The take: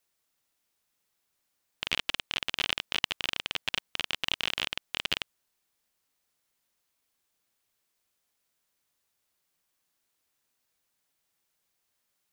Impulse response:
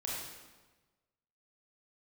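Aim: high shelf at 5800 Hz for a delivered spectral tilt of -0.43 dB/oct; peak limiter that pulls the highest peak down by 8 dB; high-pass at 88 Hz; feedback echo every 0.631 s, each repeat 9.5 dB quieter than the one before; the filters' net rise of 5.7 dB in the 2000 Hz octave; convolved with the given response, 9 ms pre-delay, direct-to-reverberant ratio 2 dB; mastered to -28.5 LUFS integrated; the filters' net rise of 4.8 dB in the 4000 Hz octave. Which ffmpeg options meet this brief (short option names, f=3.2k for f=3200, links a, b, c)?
-filter_complex "[0:a]highpass=88,equalizer=f=2k:t=o:g=6.5,equalizer=f=4k:t=o:g=6.5,highshelf=f=5.8k:g=-9,alimiter=limit=-9dB:level=0:latency=1,aecho=1:1:631|1262|1893|2524:0.335|0.111|0.0365|0.012,asplit=2[a][b];[1:a]atrim=start_sample=2205,adelay=9[c];[b][c]afir=irnorm=-1:irlink=0,volume=-4.5dB[d];[a][d]amix=inputs=2:normalize=0,volume=-2dB"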